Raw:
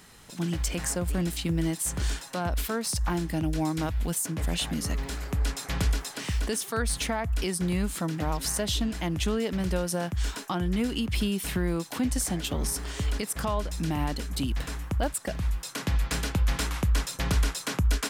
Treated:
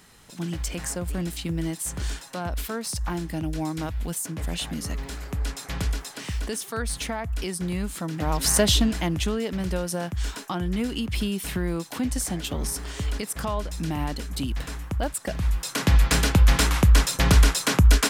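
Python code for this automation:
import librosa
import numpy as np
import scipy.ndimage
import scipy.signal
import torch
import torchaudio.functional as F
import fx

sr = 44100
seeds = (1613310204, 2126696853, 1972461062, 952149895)

y = fx.gain(x, sr, db=fx.line((8.07, -1.0), (8.6, 10.0), (9.35, 0.5), (15.1, 0.5), (15.92, 8.5)))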